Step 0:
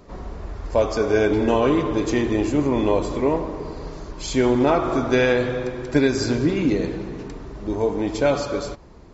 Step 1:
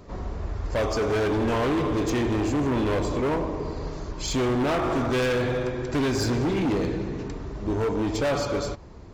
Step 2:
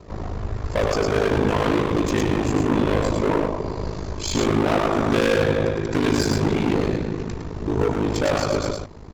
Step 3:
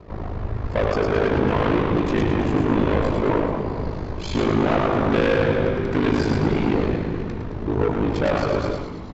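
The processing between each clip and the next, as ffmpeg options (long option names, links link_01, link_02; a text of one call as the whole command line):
ffmpeg -i in.wav -af "equalizer=frequency=93:width_type=o:width=0.85:gain=6,volume=21.5dB,asoftclip=hard,volume=-21.5dB" out.wav
ffmpeg -i in.wav -af "aecho=1:1:107:0.668,aeval=exprs='val(0)*sin(2*PI*26*n/s)':channel_layout=same,volume=5.5dB" out.wav
ffmpeg -i in.wav -filter_complex "[0:a]lowpass=3200,asplit=2[link_01][link_02];[link_02]asplit=6[link_03][link_04][link_05][link_06][link_07][link_08];[link_03]adelay=217,afreqshift=-140,volume=-10dB[link_09];[link_04]adelay=434,afreqshift=-280,volume=-15.4dB[link_10];[link_05]adelay=651,afreqshift=-420,volume=-20.7dB[link_11];[link_06]adelay=868,afreqshift=-560,volume=-26.1dB[link_12];[link_07]adelay=1085,afreqshift=-700,volume=-31.4dB[link_13];[link_08]adelay=1302,afreqshift=-840,volume=-36.8dB[link_14];[link_09][link_10][link_11][link_12][link_13][link_14]amix=inputs=6:normalize=0[link_15];[link_01][link_15]amix=inputs=2:normalize=0" out.wav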